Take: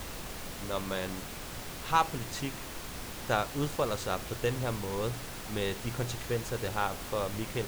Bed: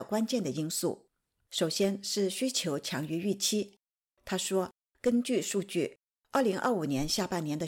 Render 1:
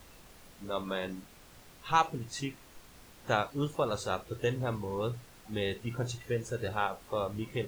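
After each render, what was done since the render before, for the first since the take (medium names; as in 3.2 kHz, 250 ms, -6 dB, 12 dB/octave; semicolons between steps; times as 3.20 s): noise print and reduce 14 dB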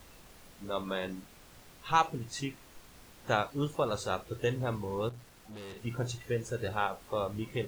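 5.09–5.77 s: valve stage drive 43 dB, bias 0.4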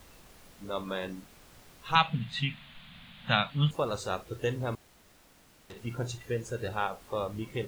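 1.95–3.71 s: FFT filter 100 Hz 0 dB, 160 Hz +12 dB, 240 Hz +5 dB, 350 Hz -19 dB, 640 Hz -1 dB, 980 Hz 0 dB, 3.6 kHz +13 dB, 5.5 kHz -14 dB, 11 kHz -10 dB; 4.75–5.70 s: room tone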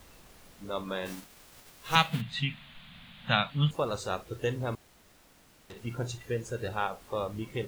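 1.05–2.20 s: formants flattened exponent 0.6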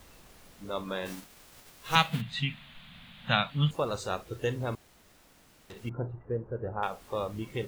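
5.89–6.83 s: low-pass 1.2 kHz 24 dB/octave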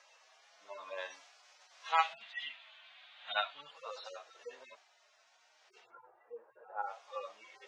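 harmonic-percussive separation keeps harmonic; elliptic band-pass 650–6200 Hz, stop band 70 dB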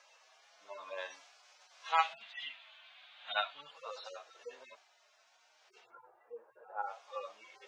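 band-stop 1.9 kHz, Q 23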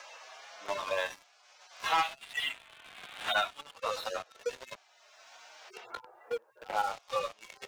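waveshaping leveller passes 3; three bands compressed up and down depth 70%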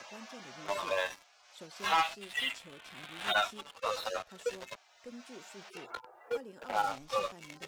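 add bed -21 dB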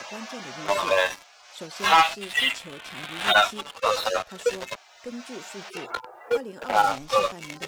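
trim +11 dB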